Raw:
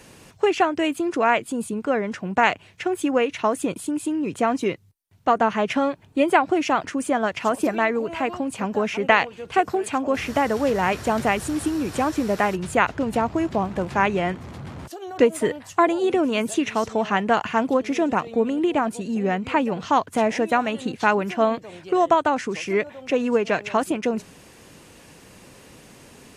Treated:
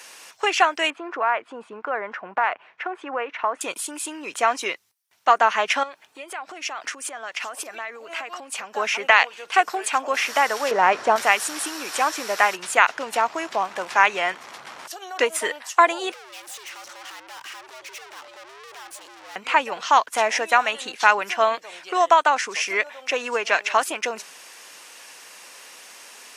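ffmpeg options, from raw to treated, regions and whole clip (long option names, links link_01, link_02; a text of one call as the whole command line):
ffmpeg -i in.wav -filter_complex "[0:a]asettb=1/sr,asplit=3[link_01][link_02][link_03];[link_01]atrim=end=0.904[link_04];[link_02]atrim=start=0.9:end=3.61,asetpts=PTS-STARTPTS,afade=type=in:duration=0.004:curve=qsin,afade=type=out:start_time=2.706:duration=0.004:curve=qsin,lowpass=1500,equalizer=frequency=1100:width_type=o:width=1.7:gain=3.5,acompressor=threshold=-21dB:ratio=3:attack=3.2:release=140:knee=1:detection=peak[link_05];[link_03]atrim=start=3.606[link_06];[link_04][link_05]acrossfade=duration=0.004:curve1=hsin:curve2=qsin[link_07];[link_07][link_06]acrossfade=duration=0.004:curve1=qsin:curve2=hsin,asettb=1/sr,asplit=3[link_08][link_09][link_10];[link_08]atrim=end=5.834[link_11];[link_09]atrim=start=5.83:end=8.76,asetpts=PTS-STARTPTS,afade=type=in:duration=0.004:curve=qsin,afade=type=out:start_time=2.926:duration=0.004:curve=qsin,bandreject=frequency=970:width=14,acompressor=threshold=-30dB:ratio=16:attack=3.2:release=140:knee=1:detection=peak[link_12];[link_10]atrim=start=8.756[link_13];[link_11][link_12]acrossfade=duration=0.004:curve1=hsin:curve2=qsin[link_14];[link_14][link_13]acrossfade=duration=0.004:curve1=qsin:curve2=hsin,asettb=1/sr,asplit=3[link_15][link_16][link_17];[link_15]atrim=end=10.714[link_18];[link_16]atrim=start=10.71:end=11.16,asetpts=PTS-STARTPTS,afade=type=in:duration=0.004:curve=qsin,afade=type=out:start_time=0.446:duration=0.004:curve=qsin,highpass=100,lowpass=7300,tiltshelf=frequency=1300:gain=9[link_19];[link_17]atrim=start=11.156[link_20];[link_18][link_19]acrossfade=duration=0.004:curve1=hsin:curve2=qsin[link_21];[link_21][link_20]acrossfade=duration=0.004:curve1=qsin:curve2=hsin,asettb=1/sr,asplit=3[link_22][link_23][link_24];[link_22]atrim=end=16.124[link_25];[link_23]atrim=start=16.12:end=19.36,asetpts=PTS-STARTPTS,afade=type=in:duration=0.004:curve=qsin,afade=type=out:start_time=3.236:duration=0.004:curve=qsin,acompressor=threshold=-24dB:ratio=2:attack=3.2:release=140:knee=1:detection=peak,aeval=exprs='(tanh(126*val(0)+0.65)-tanh(0.65))/126':channel_layout=same,afreqshift=120[link_26];[link_24]atrim=start=19.356[link_27];[link_25][link_26]acrossfade=duration=0.004:curve1=hsin:curve2=qsin[link_28];[link_28][link_27]acrossfade=duration=0.004:curve1=qsin:curve2=hsin,highpass=960,equalizer=frequency=5600:width=4.8:gain=4,alimiter=level_in=8dB:limit=-1dB:release=50:level=0:latency=1,volume=-1dB" out.wav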